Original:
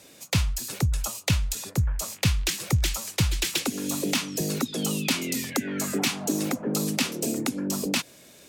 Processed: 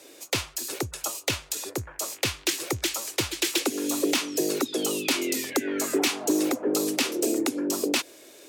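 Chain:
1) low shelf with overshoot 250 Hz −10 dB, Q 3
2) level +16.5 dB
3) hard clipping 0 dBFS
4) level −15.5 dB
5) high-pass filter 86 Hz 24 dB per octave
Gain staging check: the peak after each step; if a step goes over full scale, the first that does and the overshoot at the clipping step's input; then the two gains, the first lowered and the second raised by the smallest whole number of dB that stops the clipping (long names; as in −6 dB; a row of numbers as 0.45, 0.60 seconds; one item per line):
−9.0, +7.5, 0.0, −15.5, −12.5 dBFS
step 2, 7.5 dB
step 2 +8.5 dB, step 4 −7.5 dB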